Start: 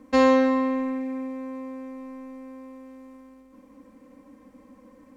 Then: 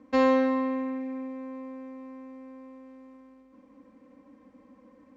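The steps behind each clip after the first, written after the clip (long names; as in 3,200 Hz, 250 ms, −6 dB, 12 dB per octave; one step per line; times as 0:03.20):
high-pass filter 76 Hz 6 dB per octave
high-frequency loss of the air 98 metres
level −3.5 dB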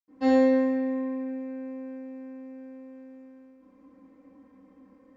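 convolution reverb RT60 0.95 s, pre-delay 76 ms
level +4.5 dB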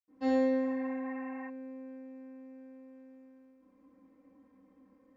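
healed spectral selection 0:00.67–0:01.47, 730–2,900 Hz before
level −7.5 dB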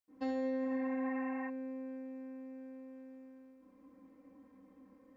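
brickwall limiter −31.5 dBFS, peak gain reduction 12 dB
level +2 dB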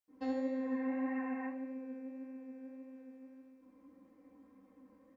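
flanger 1.7 Hz, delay 7.9 ms, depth 7.6 ms, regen +51%
on a send: repeating echo 73 ms, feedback 56%, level −12 dB
on the sum: level +2.5 dB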